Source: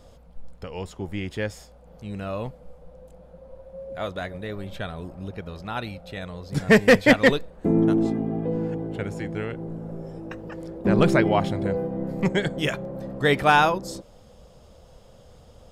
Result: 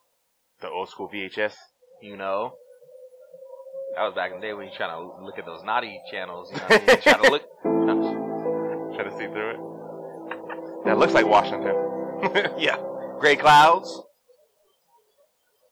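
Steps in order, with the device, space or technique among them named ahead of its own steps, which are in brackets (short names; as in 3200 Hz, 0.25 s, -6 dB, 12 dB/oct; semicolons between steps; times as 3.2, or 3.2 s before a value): drive-through speaker (BPF 470–4000 Hz; bell 940 Hz +8 dB 0.25 oct; hard clip -15 dBFS, distortion -9 dB; white noise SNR 23 dB); spectral noise reduction 25 dB; 1.43–2.09 high shelf 10000 Hz -7.5 dB; gain +6 dB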